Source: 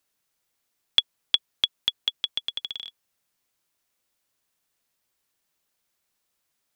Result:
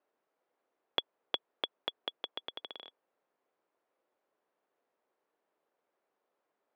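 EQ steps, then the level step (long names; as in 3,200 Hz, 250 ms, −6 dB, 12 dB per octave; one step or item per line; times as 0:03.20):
four-pole ladder band-pass 560 Hz, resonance 25%
+18.0 dB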